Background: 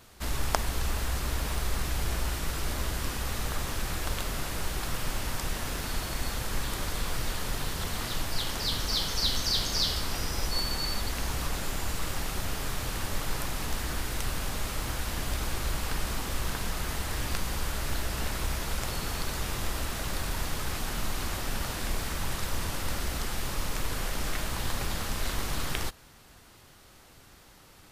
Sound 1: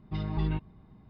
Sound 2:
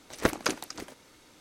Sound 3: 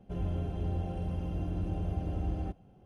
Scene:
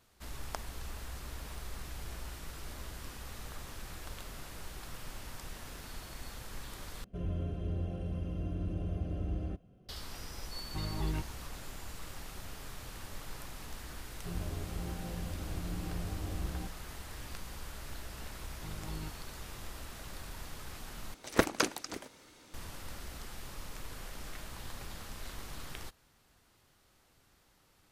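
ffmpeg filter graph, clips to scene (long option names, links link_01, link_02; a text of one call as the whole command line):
ffmpeg -i bed.wav -i cue0.wav -i cue1.wav -i cue2.wav -filter_complex "[3:a]asplit=2[link_01][link_02];[1:a]asplit=2[link_03][link_04];[0:a]volume=-13dB[link_05];[link_01]asuperstop=centerf=850:order=4:qfactor=3.2[link_06];[link_03]equalizer=frequency=180:width_type=o:width=0.36:gain=-13[link_07];[link_02]flanger=delay=16.5:depth=3.4:speed=1.2[link_08];[link_04]equalizer=frequency=180:width_type=o:width=0.37:gain=-6.5[link_09];[link_05]asplit=3[link_10][link_11][link_12];[link_10]atrim=end=7.044[link_13];[link_06]atrim=end=2.85,asetpts=PTS-STARTPTS,volume=-2.5dB[link_14];[link_11]atrim=start=9.886:end=21.144[link_15];[2:a]atrim=end=1.4,asetpts=PTS-STARTPTS,volume=-1dB[link_16];[link_12]atrim=start=22.536[link_17];[link_07]atrim=end=1.09,asetpts=PTS-STARTPTS,volume=-3dB,afade=type=in:duration=0.004:curve=hsin,afade=type=out:start_time=1.086:duration=0.004:curve=hsin,adelay=10630[link_18];[link_08]atrim=end=2.85,asetpts=PTS-STARTPTS,volume=-2.5dB,afade=type=in:duration=0.004:curve=hsin,afade=type=out:start_time=2.846:duration=0.004:curve=hsin,adelay=14150[link_19];[link_09]atrim=end=1.09,asetpts=PTS-STARTPTS,volume=-11.5dB,afade=type=in:duration=0.004:curve=hsin,afade=type=out:start_time=1.086:duration=0.004:curve=hsin,adelay=18510[link_20];[link_13][link_14]acrossfade=duration=0.004:curve1=hsin:curve2=hsin[link_21];[link_21][link_15]acrossfade=duration=0.004:curve1=hsin:curve2=hsin[link_22];[link_22][link_16]acrossfade=duration=0.004:curve1=hsin:curve2=hsin[link_23];[link_23][link_17]acrossfade=duration=0.004:curve1=hsin:curve2=hsin[link_24];[link_24][link_18][link_19][link_20]amix=inputs=4:normalize=0" out.wav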